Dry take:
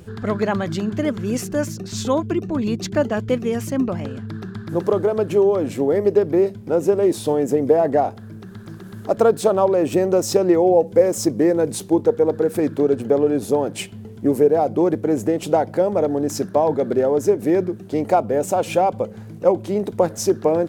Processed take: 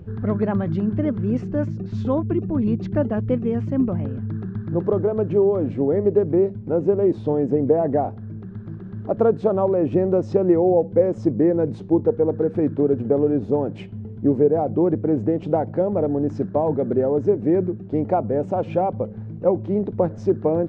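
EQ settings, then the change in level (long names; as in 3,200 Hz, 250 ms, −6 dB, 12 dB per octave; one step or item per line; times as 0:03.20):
head-to-tape spacing loss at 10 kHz 41 dB
low-shelf EQ 240 Hz +9 dB
−2.5 dB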